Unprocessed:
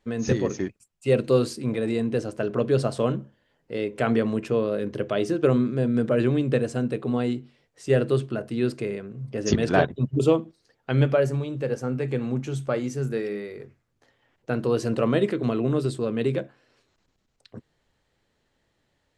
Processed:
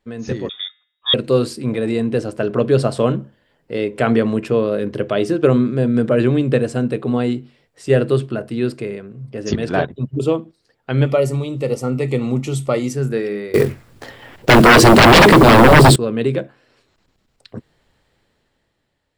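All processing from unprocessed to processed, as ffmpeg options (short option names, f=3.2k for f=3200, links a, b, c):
-filter_complex "[0:a]asettb=1/sr,asplit=3[a][b][c];[a]atrim=end=0.494[d];[b]atrim=start=0.49:end=1.14,asetpts=PTS-STARTPTS,afade=t=in:d=0.004:c=qsin,afade=t=out:st=0.646:d=0.004:c=qsin,bandreject=f=159.1:t=h:w=4,bandreject=f=318.2:t=h:w=4,bandreject=f=477.3:t=h:w=4,bandreject=f=636.4:t=h:w=4,bandreject=f=795.5:t=h:w=4,bandreject=f=954.6:t=h:w=4,bandreject=f=1.1137k:t=h:w=4,bandreject=f=1.2728k:t=h:w=4,bandreject=f=1.4319k:t=h:w=4,bandreject=f=1.591k:t=h:w=4,bandreject=f=1.7501k:t=h:w=4,bandreject=f=1.9092k:t=h:w=4,bandreject=f=2.0683k:t=h:w=4,bandreject=f=2.2274k:t=h:w=4,bandreject=f=2.3865k:t=h:w=4,bandreject=f=2.5456k:t=h:w=4,lowpass=f=3.2k:t=q:w=0.5098,lowpass=f=3.2k:t=q:w=0.6013,lowpass=f=3.2k:t=q:w=0.9,lowpass=f=3.2k:t=q:w=2.563,afreqshift=-3800[e];[c]atrim=start=1.136[f];[d][e]acrossfade=d=0.004:c1=hsin:c2=qsin[g];[g][f]acrossfade=d=0.004:c1=qsin:c2=hsin,asettb=1/sr,asplit=3[h][i][j];[h]atrim=end=11.064[k];[i]atrim=start=11.06:end=12.93,asetpts=PTS-STARTPTS,afade=t=in:d=0.004:c=qsin,afade=t=out:st=1.866:d=0.004:c=qsin,asuperstop=centerf=1600:order=12:qfactor=4.8,aemphasis=mode=production:type=cd[l];[j]atrim=start=12.926[m];[k][l]acrossfade=d=0.004:c1=hsin:c2=qsin[n];[n][m]acrossfade=d=0.004:c1=qsin:c2=hsin,asettb=1/sr,asplit=3[o][p][q];[o]atrim=end=13.544[r];[p]atrim=start=13.54:end=15.96,asetpts=PTS-STARTPTS,afade=t=in:d=0.004:c=qsin,afade=t=out:st=2.416:d=0.004:c=qsin,aeval=exprs='0.335*sin(PI/2*7.08*val(0)/0.335)':c=same,acrusher=bits=5:mode=log:mix=0:aa=0.000001[s];[q]atrim=start=15.956[t];[r][s]acrossfade=d=0.004:c1=hsin:c2=qsin[u];[u][t]acrossfade=d=0.004:c1=qsin:c2=hsin,equalizer=f=6.3k:t=o:w=0.21:g=-6,dynaudnorm=f=240:g=9:m=11.5dB,volume=-1dB"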